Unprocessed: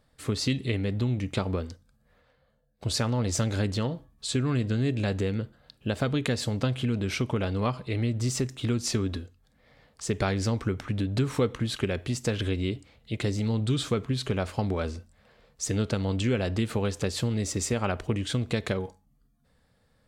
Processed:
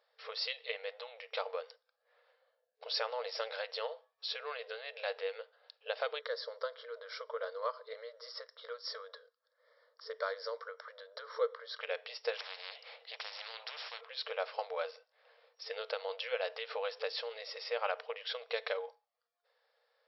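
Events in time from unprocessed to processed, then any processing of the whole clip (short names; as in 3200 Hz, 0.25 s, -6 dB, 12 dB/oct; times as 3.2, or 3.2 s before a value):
6.19–11.81 fixed phaser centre 520 Hz, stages 8
12.37–14.01 spectral compressor 10:1
whole clip: FFT band-pass 440–5600 Hz; gain -4 dB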